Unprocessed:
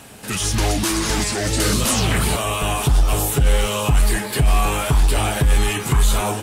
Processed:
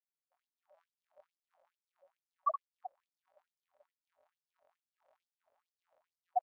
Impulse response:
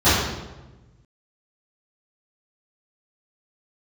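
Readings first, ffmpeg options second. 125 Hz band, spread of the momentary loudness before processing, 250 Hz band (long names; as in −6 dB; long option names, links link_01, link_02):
below −40 dB, 2 LU, below −40 dB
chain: -filter_complex "[0:a]aeval=exprs='0.422*(cos(1*acos(clip(val(0)/0.422,-1,1)))-cos(1*PI/2))+0.0376*(cos(2*acos(clip(val(0)/0.422,-1,1)))-cos(2*PI/2))+0.119*(cos(4*acos(clip(val(0)/0.422,-1,1)))-cos(4*PI/2))':channel_layout=same,highpass=frequency=56:width=0.5412,highpass=frequency=56:width=1.3066,aecho=1:1:89|178|267|356:0.282|0.11|0.0429|0.0167,asplit=2[link_01][link_02];[1:a]atrim=start_sample=2205,afade=type=out:start_time=0.41:duration=0.01,atrim=end_sample=18522,adelay=25[link_03];[link_02][link_03]afir=irnorm=-1:irlink=0,volume=-25dB[link_04];[link_01][link_04]amix=inputs=2:normalize=0,acompressor=threshold=-14dB:ratio=5,bandreject=frequency=870:width=12,bandreject=frequency=116.6:width_type=h:width=4,bandreject=frequency=233.2:width_type=h:width=4,bandreject=frequency=349.8:width_type=h:width=4,bandreject=frequency=466.4:width_type=h:width=4,bandreject=frequency=583:width_type=h:width=4,bandreject=frequency=699.6:width_type=h:width=4,bandreject=frequency=816.2:width_type=h:width=4,bandreject=frequency=932.8:width_type=h:width=4,bandreject=frequency=1049.4:width_type=h:width=4,bandreject=frequency=1166:width_type=h:width=4,bandreject=frequency=1282.6:width_type=h:width=4,bandreject=frequency=1399.2:width_type=h:width=4,bandreject=frequency=1515.8:width_type=h:width=4,bandreject=frequency=1632.4:width_type=h:width=4,bandreject=frequency=1749:width_type=h:width=4,bandreject=frequency=1865.6:width_type=h:width=4,bandreject=frequency=1982.2:width_type=h:width=4,bandreject=frequency=2098.8:width_type=h:width=4,bandreject=frequency=2215.4:width_type=h:width=4,bandreject=frequency=2332:width_type=h:width=4,bandreject=frequency=2448.6:width_type=h:width=4,bandreject=frequency=2565.2:width_type=h:width=4,bandreject=frequency=2681.8:width_type=h:width=4,bandreject=frequency=2798.4:width_type=h:width=4,bandreject=frequency=2915:width_type=h:width=4,bandreject=frequency=3031.6:width_type=h:width=4,bandreject=frequency=3148.2:width_type=h:width=4,bandreject=frequency=3264.8:width_type=h:width=4,bandreject=frequency=3381.4:width_type=h:width=4,bandreject=frequency=3498:width_type=h:width=4,bandreject=frequency=3614.6:width_type=h:width=4,bandreject=frequency=3731.2:width_type=h:width=4,bandreject=frequency=3847.8:width_type=h:width=4,bandreject=frequency=3964.4:width_type=h:width=4,bandreject=frequency=4081:width_type=h:width=4,bandreject=frequency=4197.6:width_type=h:width=4,bandreject=frequency=4314.2:width_type=h:width=4,bandreject=frequency=4430.8:width_type=h:width=4,bandreject=frequency=4547.4:width_type=h:width=4,dynaudnorm=framelen=200:gausssize=7:maxgain=8dB,alimiter=limit=-8dB:level=0:latency=1:release=137,afftfilt=real='re*gte(hypot(re,im),0.562)':imag='im*gte(hypot(re,im),0.562)':win_size=1024:overlap=0.75,afftfilt=real='re*gte(b*sr/1024,530*pow(5000/530,0.5+0.5*sin(2*PI*2.3*pts/sr)))':imag='im*gte(b*sr/1024,530*pow(5000/530,0.5+0.5*sin(2*PI*2.3*pts/sr)))':win_size=1024:overlap=0.75,volume=6dB"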